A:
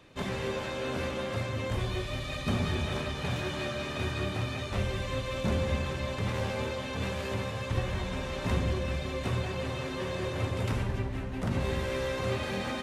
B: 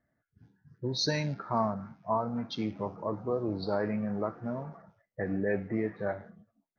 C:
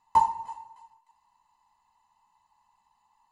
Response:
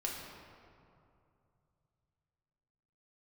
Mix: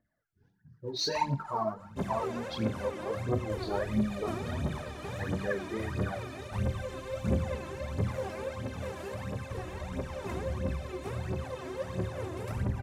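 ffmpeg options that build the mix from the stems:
-filter_complex "[0:a]highpass=78,equalizer=f=3.3k:t=o:w=1.5:g=-9.5,adelay=1800,volume=-7.5dB,asplit=2[a][b];[b]volume=-9dB[c];[1:a]flanger=delay=18.5:depth=7.8:speed=0.57,bandreject=f=50:t=h:w=6,bandreject=f=100:t=h:w=6,bandreject=f=150:t=h:w=6,volume=-2dB,asplit=2[d][e];[2:a]adelay=1000,volume=-5.5dB[f];[e]apad=whole_len=190317[g];[f][g]sidechaincompress=threshold=-42dB:ratio=8:attack=6:release=108[h];[3:a]atrim=start_sample=2205[i];[c][i]afir=irnorm=-1:irlink=0[j];[a][d][h][j]amix=inputs=4:normalize=0,aphaser=in_gain=1:out_gain=1:delay=3.2:decay=0.7:speed=1.5:type=triangular"

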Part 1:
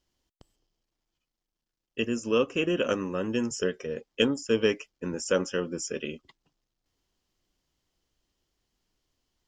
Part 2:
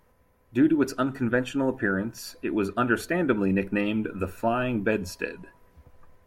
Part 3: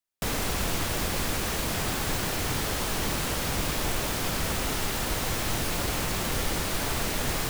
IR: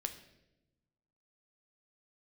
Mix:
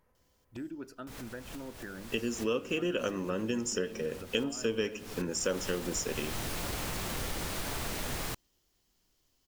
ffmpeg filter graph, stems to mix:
-filter_complex "[0:a]highshelf=f=8.3k:g=12,adelay=150,volume=-1.5dB,asplit=2[a][b];[b]volume=-5dB[c];[1:a]acompressor=threshold=-39dB:ratio=2,volume=-9dB,asplit=2[d][e];[2:a]adelay=850,volume=-5.5dB[f];[e]apad=whole_len=368022[g];[f][g]sidechaincompress=threshold=-57dB:ratio=12:attack=5.9:release=213[h];[3:a]atrim=start_sample=2205[i];[c][i]afir=irnorm=-1:irlink=0[j];[a][d][h][j]amix=inputs=4:normalize=0,acompressor=threshold=-32dB:ratio=2.5"

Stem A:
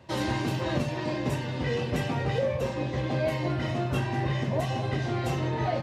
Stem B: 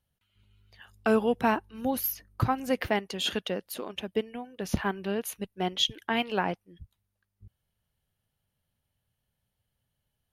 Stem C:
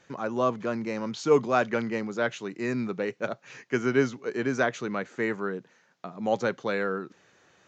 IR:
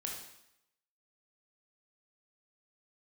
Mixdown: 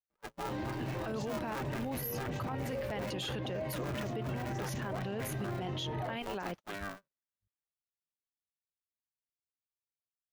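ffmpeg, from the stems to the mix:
-filter_complex "[0:a]lowpass=f=1.4k:p=1,adelay=350,volume=-6.5dB[a];[1:a]alimiter=limit=-22.5dB:level=0:latency=1:release=298,volume=0.5dB[b];[2:a]equalizer=f=280:w=4:g=-13.5,aecho=1:1:2.9:0.41,aeval=exprs='val(0)*sgn(sin(2*PI*200*n/s))':c=same,volume=-10.5dB[c];[a][b][c]amix=inputs=3:normalize=0,agate=range=-36dB:threshold=-39dB:ratio=16:detection=peak,alimiter=level_in=5.5dB:limit=-24dB:level=0:latency=1:release=13,volume=-5.5dB"

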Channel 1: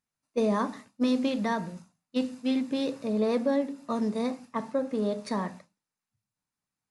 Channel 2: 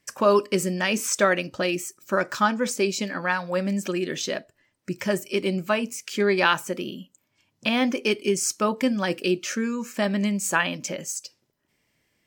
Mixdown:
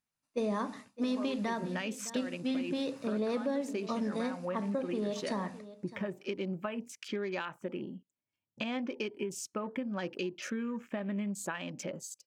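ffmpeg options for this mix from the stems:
-filter_complex "[0:a]volume=-2.5dB,asplit=3[a][b][c];[b]volume=-18.5dB[d];[1:a]acompressor=threshold=-24dB:ratio=16,highshelf=f=2k:g=-7.5,afwtdn=0.00447,adelay=950,volume=-5.5dB[e];[c]apad=whole_len=582947[f];[e][f]sidechaincompress=threshold=-34dB:ratio=8:attack=16:release=102[g];[d]aecho=0:1:609:1[h];[a][g][h]amix=inputs=3:normalize=0,equalizer=f=2.8k:t=o:w=0.77:g=2.5,acompressor=threshold=-32dB:ratio=2"

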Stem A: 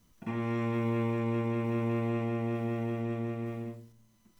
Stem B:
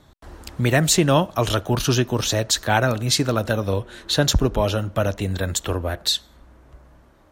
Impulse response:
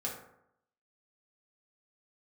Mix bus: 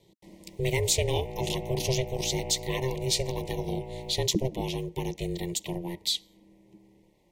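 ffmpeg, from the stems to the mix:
-filter_complex "[0:a]adelay=500,volume=2dB[a];[1:a]highpass=53,equalizer=f=580:t=o:w=1.2:g=-12.5,volume=-3.5dB,asplit=2[b][c];[c]apad=whole_len=215689[d];[a][d]sidechaincompress=threshold=-27dB:ratio=5:attack=20:release=972[e];[e][b]amix=inputs=2:normalize=0,aeval=exprs='val(0)*sin(2*PI*260*n/s)':c=same,asuperstop=centerf=1400:order=12:qfactor=1.6"

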